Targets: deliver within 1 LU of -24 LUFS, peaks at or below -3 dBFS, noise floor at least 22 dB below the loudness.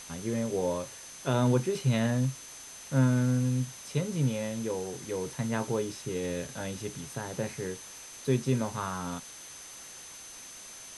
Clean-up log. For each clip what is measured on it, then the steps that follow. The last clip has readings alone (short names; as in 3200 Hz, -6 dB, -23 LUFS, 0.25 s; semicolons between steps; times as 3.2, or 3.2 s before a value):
steady tone 6200 Hz; tone level -47 dBFS; noise floor -47 dBFS; noise floor target -53 dBFS; loudness -31.0 LUFS; peak -14.0 dBFS; loudness target -24.0 LUFS
-> notch 6200 Hz, Q 30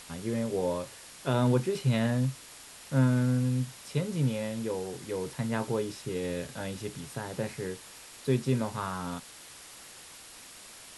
steady tone none; noise floor -49 dBFS; noise floor target -53 dBFS
-> denoiser 6 dB, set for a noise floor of -49 dBFS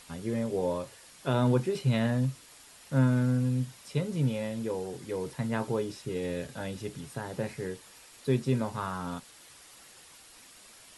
noise floor -54 dBFS; loudness -31.0 LUFS; peak -14.0 dBFS; loudness target -24.0 LUFS
-> gain +7 dB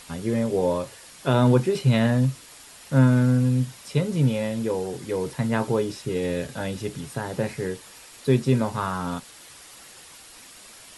loudness -24.0 LUFS; peak -7.0 dBFS; noise floor -47 dBFS